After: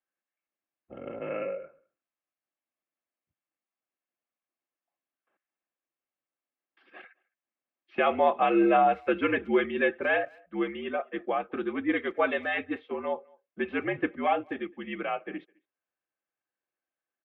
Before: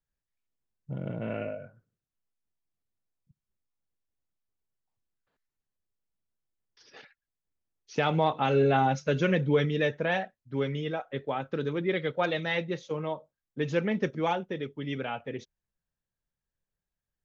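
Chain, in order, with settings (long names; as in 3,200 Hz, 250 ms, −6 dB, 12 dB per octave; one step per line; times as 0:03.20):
notch comb filter 500 Hz
single-sideband voice off tune −71 Hz 360–2,900 Hz
far-end echo of a speakerphone 210 ms, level −28 dB
level +4.5 dB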